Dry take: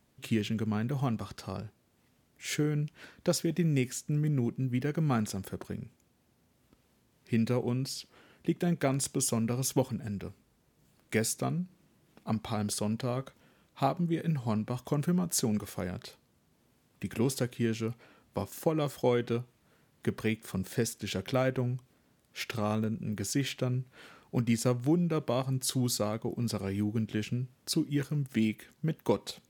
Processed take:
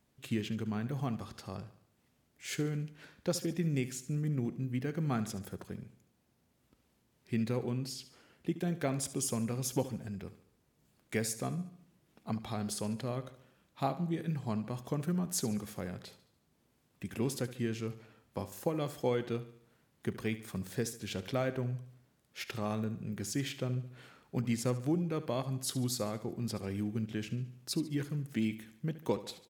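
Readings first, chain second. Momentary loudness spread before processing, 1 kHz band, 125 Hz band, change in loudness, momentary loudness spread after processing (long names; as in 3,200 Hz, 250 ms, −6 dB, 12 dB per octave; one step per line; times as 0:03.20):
11 LU, −4.5 dB, −4.5 dB, −4.5 dB, 11 LU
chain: repeating echo 72 ms, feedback 49%, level −14.5 dB
level −4.5 dB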